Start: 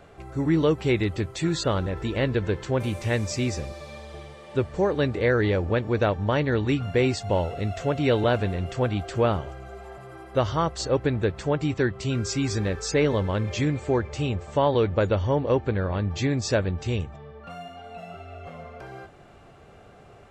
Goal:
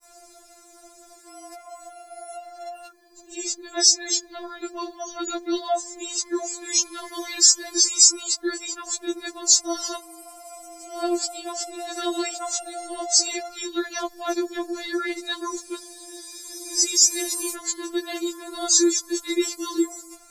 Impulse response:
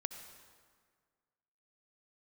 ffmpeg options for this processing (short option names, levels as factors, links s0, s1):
-af "areverse,aexciter=amount=14.2:drive=4.8:freq=4500,afftfilt=real='re*4*eq(mod(b,16),0)':imag='im*4*eq(mod(b,16),0)':win_size=2048:overlap=0.75"